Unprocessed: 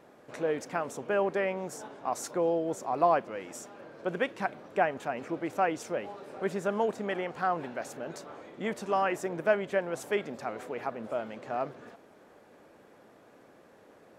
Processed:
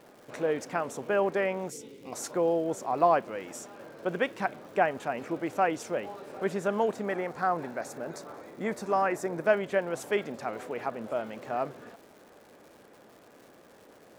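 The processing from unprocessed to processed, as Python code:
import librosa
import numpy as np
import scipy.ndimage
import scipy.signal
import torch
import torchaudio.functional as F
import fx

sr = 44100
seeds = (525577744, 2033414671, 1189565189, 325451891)

y = fx.spec_box(x, sr, start_s=1.7, length_s=0.43, low_hz=540.0, high_hz=1900.0, gain_db=-21)
y = fx.peak_eq(y, sr, hz=3000.0, db=-12.5, octaves=0.34, at=(7.03, 9.47))
y = fx.dmg_crackle(y, sr, seeds[0], per_s=310.0, level_db=-49.0)
y = y * librosa.db_to_amplitude(1.5)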